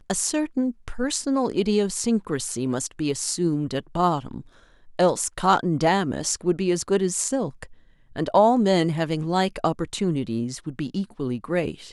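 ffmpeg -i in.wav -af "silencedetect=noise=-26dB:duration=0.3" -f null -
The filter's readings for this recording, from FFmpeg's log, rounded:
silence_start: 4.38
silence_end: 4.99 | silence_duration: 0.62
silence_start: 7.63
silence_end: 8.16 | silence_duration: 0.53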